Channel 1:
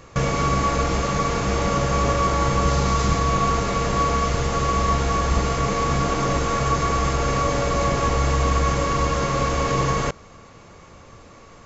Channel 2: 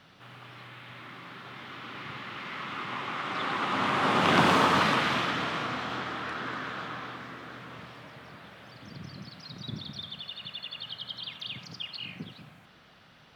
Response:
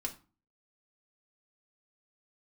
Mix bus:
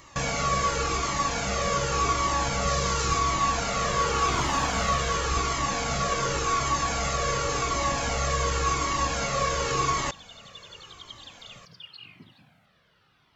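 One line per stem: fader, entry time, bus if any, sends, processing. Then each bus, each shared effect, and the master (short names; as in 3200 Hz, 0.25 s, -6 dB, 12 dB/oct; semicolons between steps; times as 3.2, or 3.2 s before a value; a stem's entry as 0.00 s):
+0.5 dB, 0.00 s, no send, tilt +2 dB/oct
-3.5 dB, 0.00 s, no send, dry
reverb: off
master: cascading flanger falling 0.9 Hz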